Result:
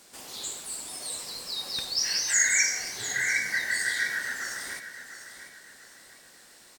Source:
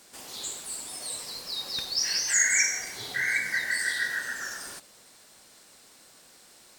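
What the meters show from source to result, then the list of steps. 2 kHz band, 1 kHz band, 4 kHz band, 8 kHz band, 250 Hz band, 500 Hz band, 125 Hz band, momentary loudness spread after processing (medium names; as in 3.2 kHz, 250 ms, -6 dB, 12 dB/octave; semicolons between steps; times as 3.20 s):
+0.5 dB, +0.5 dB, +0.5 dB, +0.5 dB, +0.5 dB, +0.5 dB, +0.5 dB, 20 LU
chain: feedback delay 700 ms, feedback 37%, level -11.5 dB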